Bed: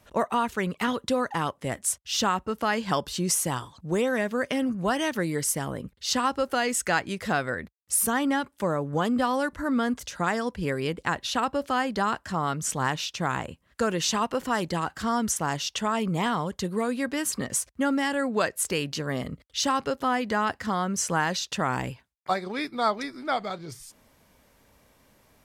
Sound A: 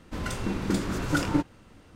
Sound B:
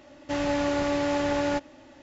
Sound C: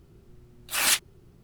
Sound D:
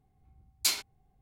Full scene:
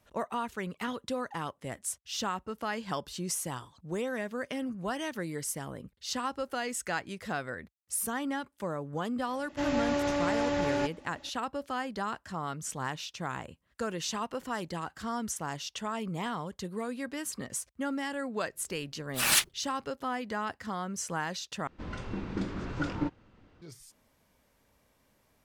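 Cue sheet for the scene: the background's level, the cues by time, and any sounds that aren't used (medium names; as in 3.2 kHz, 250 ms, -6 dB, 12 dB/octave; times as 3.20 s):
bed -8.5 dB
9.28 s: add B -3.5 dB
18.45 s: add C -2 dB + gate -47 dBFS, range -14 dB
21.67 s: replace with A -6.5 dB + distance through air 140 m
not used: D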